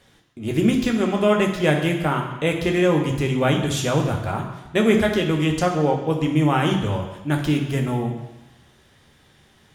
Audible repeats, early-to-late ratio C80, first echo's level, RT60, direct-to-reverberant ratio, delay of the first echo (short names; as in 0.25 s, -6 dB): none, 7.5 dB, none, 1.0 s, 1.5 dB, none